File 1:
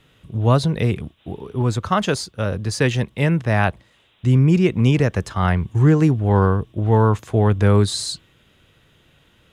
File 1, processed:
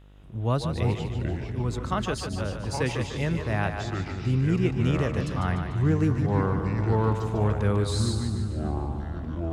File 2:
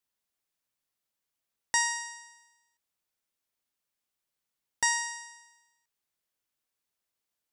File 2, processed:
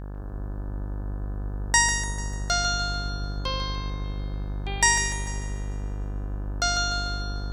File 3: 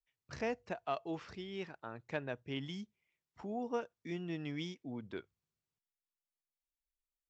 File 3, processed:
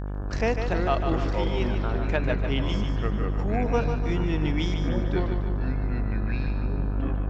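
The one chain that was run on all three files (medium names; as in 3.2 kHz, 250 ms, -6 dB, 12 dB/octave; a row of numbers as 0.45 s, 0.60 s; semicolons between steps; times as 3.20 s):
mains buzz 50 Hz, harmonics 35, -42 dBFS -7 dB/octave; ever faster or slower copies 176 ms, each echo -5 st, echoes 3, each echo -6 dB; two-band feedback delay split 320 Hz, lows 339 ms, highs 148 ms, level -7 dB; normalise loudness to -27 LUFS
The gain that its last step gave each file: -9.5 dB, +6.5 dB, +11.0 dB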